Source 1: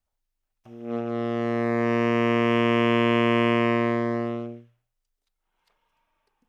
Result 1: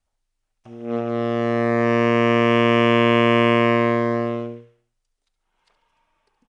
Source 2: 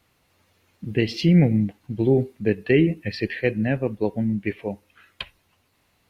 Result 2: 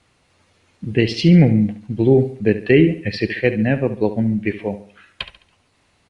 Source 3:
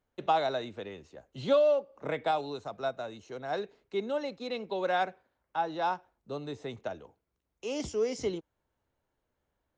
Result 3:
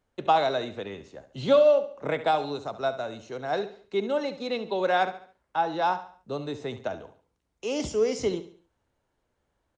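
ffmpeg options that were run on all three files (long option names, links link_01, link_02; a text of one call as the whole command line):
ffmpeg -i in.wav -af "aecho=1:1:70|140|210|280:0.224|0.0873|0.0341|0.0133,aresample=22050,aresample=44100,volume=5dB" out.wav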